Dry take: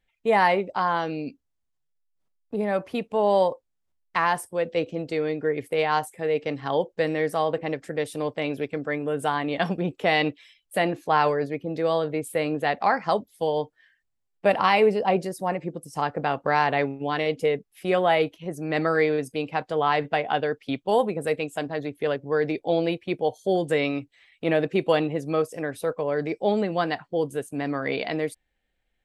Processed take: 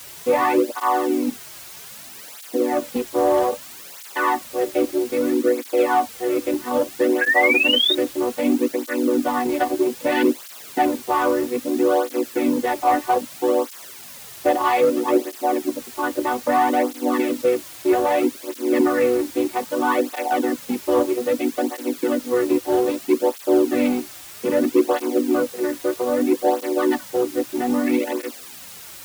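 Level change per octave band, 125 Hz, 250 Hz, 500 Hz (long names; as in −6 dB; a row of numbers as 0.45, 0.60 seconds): −12.0, +8.5, +4.0 decibels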